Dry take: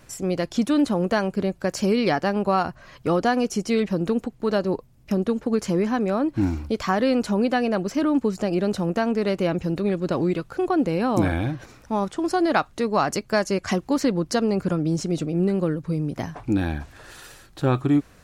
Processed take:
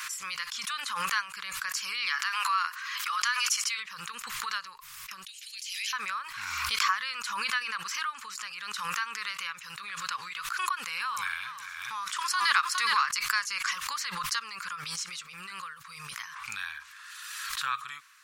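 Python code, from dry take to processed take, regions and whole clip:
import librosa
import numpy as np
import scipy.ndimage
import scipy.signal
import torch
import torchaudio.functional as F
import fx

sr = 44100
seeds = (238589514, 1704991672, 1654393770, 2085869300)

y = fx.chain(x, sr, fx.transient(attack_db=1, sustain_db=8),
    fx.highpass(hz=1000.0, slope=12), at=(2.09, 3.78))
y = fx.chain(y, sr, fx.steep_highpass(hz=2600.0, slope=36),
    fx.over_compress(threshold_db=-48.0, ratio=-1.0), at=(5.25, 5.93))
y = fx.chain(y, sr, fx.high_shelf(hz=10000.0, db=4.0),
    fx.echo_single(ms=413, db=-9.5), at=(10.56, 13.06))
y = scipy.signal.sosfilt(scipy.signal.ellip(4, 1.0, 40, 1100.0, 'highpass', fs=sr, output='sos'), y)
y = fx.pre_swell(y, sr, db_per_s=28.0)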